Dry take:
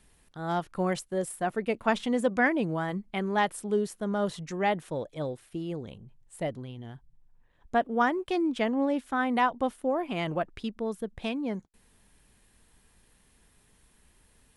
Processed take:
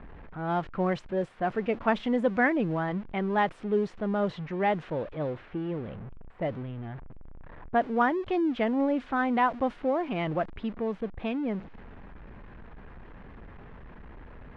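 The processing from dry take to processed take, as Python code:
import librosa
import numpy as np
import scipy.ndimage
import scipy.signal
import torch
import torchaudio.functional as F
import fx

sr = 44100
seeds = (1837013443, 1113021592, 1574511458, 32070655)

y = x + 0.5 * 10.0 ** (-38.0 / 20.0) * np.sign(x)
y = fx.env_lowpass(y, sr, base_hz=1300.0, full_db=-21.0)
y = scipy.signal.sosfilt(scipy.signal.butter(2, 2500.0, 'lowpass', fs=sr, output='sos'), y)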